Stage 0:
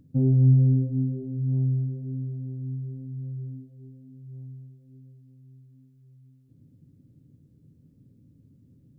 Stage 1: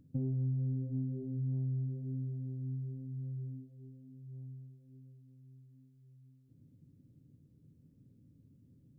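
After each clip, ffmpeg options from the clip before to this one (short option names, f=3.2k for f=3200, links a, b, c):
-af "acompressor=threshold=-26dB:ratio=6,volume=-6dB"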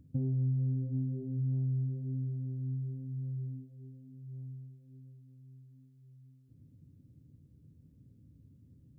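-af "equalizer=f=64:t=o:w=1.3:g=10.5"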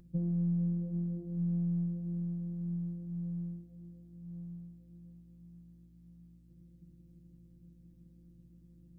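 -af "afftfilt=real='hypot(re,im)*cos(PI*b)':imag='0':win_size=1024:overlap=0.75,aeval=exprs='val(0)+0.000501*(sin(2*PI*60*n/s)+sin(2*PI*2*60*n/s)/2+sin(2*PI*3*60*n/s)/3+sin(2*PI*4*60*n/s)/4+sin(2*PI*5*60*n/s)/5)':c=same,volume=4.5dB"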